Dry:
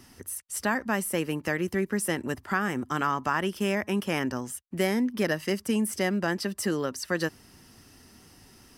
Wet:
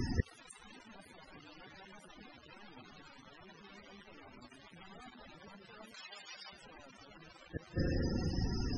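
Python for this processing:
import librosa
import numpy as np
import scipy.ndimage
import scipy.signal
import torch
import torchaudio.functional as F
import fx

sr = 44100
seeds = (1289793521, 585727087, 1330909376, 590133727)

y = fx.reverse_delay(x, sr, ms=232, wet_db=-9.5)
y = fx.rev_spring(y, sr, rt60_s=2.8, pass_ms=(38,), chirp_ms=50, drr_db=16.5)
y = fx.over_compress(y, sr, threshold_db=-29.0, ratio=-0.5, at=(3.33, 4.05))
y = fx.low_shelf(y, sr, hz=120.0, db=9.5)
y = (np.mod(10.0 ** (23.0 / 20.0) * y + 1.0, 2.0) - 1.0) / 10.0 ** (23.0 / 20.0)
y = fx.gate_flip(y, sr, shuts_db=-33.0, range_db=-41)
y = fx.dmg_crackle(y, sr, seeds[0], per_s=350.0, level_db=-47.0)
y = fx.echo_wet_highpass(y, sr, ms=99, feedback_pct=63, hz=4700.0, wet_db=-16.0)
y = fx.spec_topn(y, sr, count=32)
y = fx.weighting(y, sr, curve='ITU-R 468', at=(5.94, 6.53))
y = F.gain(torch.from_numpy(y), 16.0).numpy()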